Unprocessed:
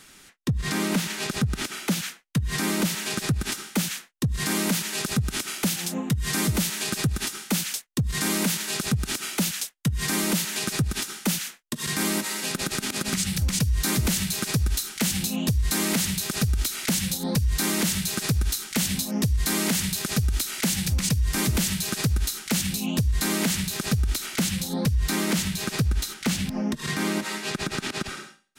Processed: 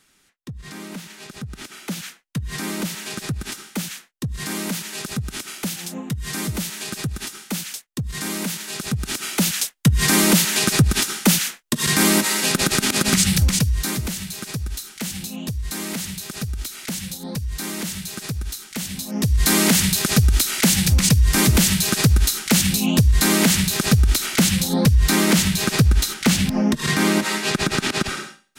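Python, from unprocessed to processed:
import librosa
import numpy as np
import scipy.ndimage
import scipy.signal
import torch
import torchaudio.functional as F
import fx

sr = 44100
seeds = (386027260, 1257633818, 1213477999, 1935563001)

y = fx.gain(x, sr, db=fx.line((1.3, -10.0), (2.09, -2.0), (8.72, -2.0), (9.78, 9.0), (13.34, 9.0), (14.14, -4.0), (18.93, -4.0), (19.46, 8.0)))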